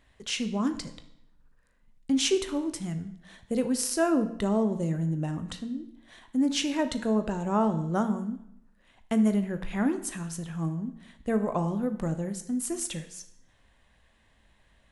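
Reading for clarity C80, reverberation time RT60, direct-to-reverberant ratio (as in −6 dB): 15.0 dB, 0.75 s, 8.5 dB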